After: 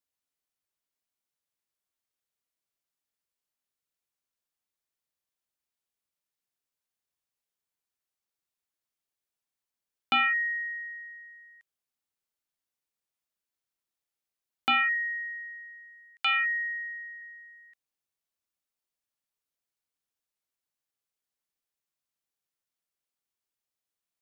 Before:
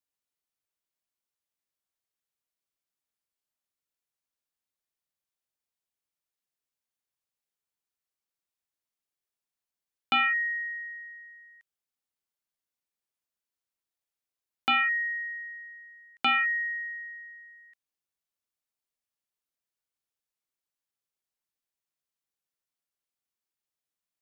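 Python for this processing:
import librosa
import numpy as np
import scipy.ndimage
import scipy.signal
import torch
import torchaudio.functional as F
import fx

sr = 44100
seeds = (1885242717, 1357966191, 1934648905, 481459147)

y = fx.highpass(x, sr, hz=1300.0, slope=12, at=(14.94, 17.22))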